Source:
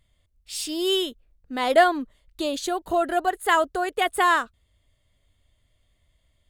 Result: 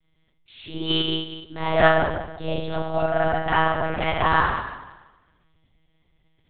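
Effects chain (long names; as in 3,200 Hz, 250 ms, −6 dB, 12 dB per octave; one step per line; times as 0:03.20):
spring reverb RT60 1.1 s, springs 37/47 ms, chirp 55 ms, DRR −7 dB
one-pitch LPC vocoder at 8 kHz 160 Hz
level −6.5 dB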